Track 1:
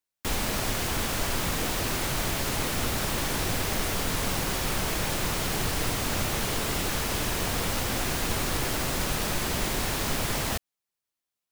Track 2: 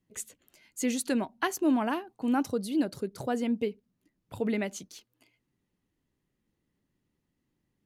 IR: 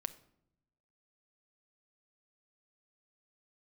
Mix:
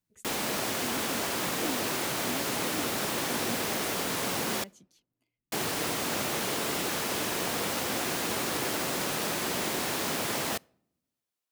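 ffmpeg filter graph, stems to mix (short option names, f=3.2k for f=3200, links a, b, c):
-filter_complex "[0:a]highpass=300,volume=-3dB,asplit=3[a][b][c];[a]atrim=end=4.64,asetpts=PTS-STARTPTS,afade=t=out:st=4.636:d=0.004:c=hsin[d];[b]atrim=start=4.64:end=5.52,asetpts=PTS-STARTPTS,volume=0[e];[c]atrim=start=5.52,asetpts=PTS-STARTPTS,afade=t=in:d=0.004:c=hsin[f];[d][e][f]concat=n=3:v=0:a=1,asplit=2[g][h];[h]volume=-12.5dB[i];[1:a]volume=-17.5dB[j];[2:a]atrim=start_sample=2205[k];[i][k]afir=irnorm=-1:irlink=0[l];[g][j][l]amix=inputs=3:normalize=0,lowshelf=f=270:g=9"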